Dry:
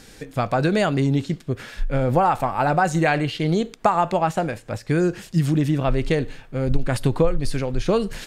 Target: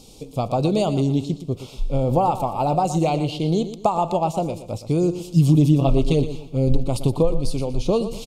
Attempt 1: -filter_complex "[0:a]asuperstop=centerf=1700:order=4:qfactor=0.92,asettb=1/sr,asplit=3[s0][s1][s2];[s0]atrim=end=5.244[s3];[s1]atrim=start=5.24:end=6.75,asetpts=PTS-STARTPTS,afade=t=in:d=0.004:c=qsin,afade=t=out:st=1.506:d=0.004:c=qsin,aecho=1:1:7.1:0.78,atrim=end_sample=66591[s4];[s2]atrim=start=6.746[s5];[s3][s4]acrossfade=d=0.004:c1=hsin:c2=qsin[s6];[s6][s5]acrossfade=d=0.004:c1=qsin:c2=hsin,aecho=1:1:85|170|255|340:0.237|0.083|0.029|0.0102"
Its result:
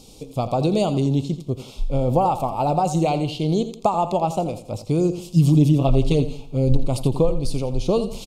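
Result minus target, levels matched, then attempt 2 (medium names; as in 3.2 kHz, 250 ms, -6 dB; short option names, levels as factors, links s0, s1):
echo 34 ms early
-filter_complex "[0:a]asuperstop=centerf=1700:order=4:qfactor=0.92,asettb=1/sr,asplit=3[s0][s1][s2];[s0]atrim=end=5.244[s3];[s1]atrim=start=5.24:end=6.75,asetpts=PTS-STARTPTS,afade=t=in:d=0.004:c=qsin,afade=t=out:st=1.506:d=0.004:c=qsin,aecho=1:1:7.1:0.78,atrim=end_sample=66591[s4];[s2]atrim=start=6.746[s5];[s3][s4]acrossfade=d=0.004:c1=hsin:c2=qsin[s6];[s6][s5]acrossfade=d=0.004:c1=qsin:c2=hsin,aecho=1:1:119|238|357|476:0.237|0.083|0.029|0.0102"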